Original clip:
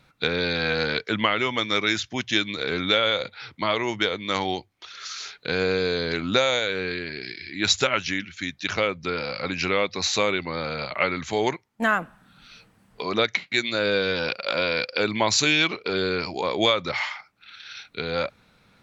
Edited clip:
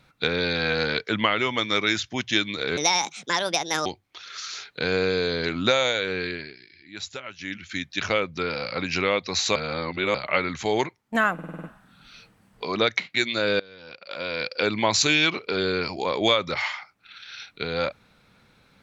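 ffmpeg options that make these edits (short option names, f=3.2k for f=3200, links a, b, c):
-filter_complex "[0:a]asplit=14[a][b][c][d][e][f][g][h][i][j][k][l][m][n];[a]atrim=end=2.774[o];[b]atrim=start=2.77:end=4.53,asetpts=PTS-STARTPTS,asetrate=71442,aresample=44100,atrim=end_sample=47911,asetpts=PTS-STARTPTS[p];[c]atrim=start=4.526:end=7.24,asetpts=PTS-STARTPTS,afade=t=out:st=2.484:d=0.23:silence=0.188365[q];[d]atrim=start=7.24:end=8.06,asetpts=PTS-STARTPTS,volume=-14.5dB[r];[e]atrim=start=8.06:end=10.232,asetpts=PTS-STARTPTS,afade=t=in:d=0.23:silence=0.188365[s];[f]atrim=start=10.228:end=10.822,asetpts=PTS-STARTPTS,areverse[t];[g]atrim=start=10.818:end=12.062[u];[h]atrim=start=12.008:end=12.062[v];[i]atrim=start=12.008:end=12.062[w];[j]atrim=start=12.008:end=12.062[x];[k]atrim=start=12.008:end=12.062[y];[l]atrim=start=12.008:end=12.062[z];[m]atrim=start=12.008:end=13.97,asetpts=PTS-STARTPTS,afade=t=out:st=1.958:d=0.004:c=hsin:silence=0.0668344[aa];[n]atrim=start=13.97,asetpts=PTS-STARTPTS,afade=t=in:d=1.01:c=qua:silence=0.0668344[ab];[o][p]acrossfade=d=0.004:c1=hsin:c2=hsin[ac];[q][r][s]concat=n=3:v=0:a=1[ad];[ac][ad]acrossfade=d=0.004:c1=hsin:c2=hsin[ae];[ae][t]acrossfade=d=0.004:c1=hsin:c2=hsin[af];[af][u]acrossfade=d=0.004:c1=hsin:c2=hsin[ag];[ag][v]acrossfade=d=0.004:c1=hsin:c2=hsin[ah];[ah][w]acrossfade=d=0.004:c1=hsin:c2=hsin[ai];[ai][x]acrossfade=d=0.004:c1=hsin:c2=hsin[aj];[aj][y]acrossfade=d=0.004:c1=hsin:c2=hsin[ak];[ak][z]acrossfade=d=0.004:c1=hsin:c2=hsin[al];[aa][ab]concat=n=2:v=0:a=1[am];[al][am]acrossfade=d=0.004:c1=hsin:c2=hsin"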